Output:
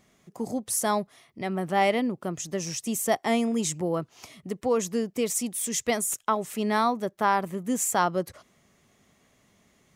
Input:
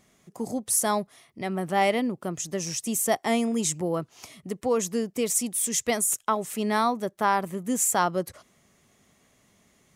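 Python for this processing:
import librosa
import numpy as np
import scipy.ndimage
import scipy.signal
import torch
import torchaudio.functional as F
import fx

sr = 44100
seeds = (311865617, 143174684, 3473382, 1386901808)

y = fx.peak_eq(x, sr, hz=10000.0, db=-4.5, octaves=1.2)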